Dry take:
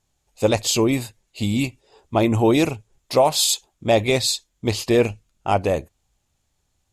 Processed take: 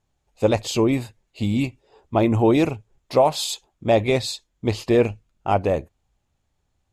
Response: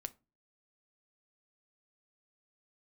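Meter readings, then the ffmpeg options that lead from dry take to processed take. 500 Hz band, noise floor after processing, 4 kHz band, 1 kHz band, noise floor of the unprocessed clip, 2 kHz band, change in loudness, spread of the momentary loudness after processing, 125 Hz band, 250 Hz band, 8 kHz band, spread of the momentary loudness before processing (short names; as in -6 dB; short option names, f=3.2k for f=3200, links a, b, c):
0.0 dB, -73 dBFS, -6.0 dB, -0.5 dB, -72 dBFS, -3.0 dB, -1.0 dB, 11 LU, 0.0 dB, 0.0 dB, -9.5 dB, 9 LU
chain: -af "highshelf=f=3.8k:g=-12"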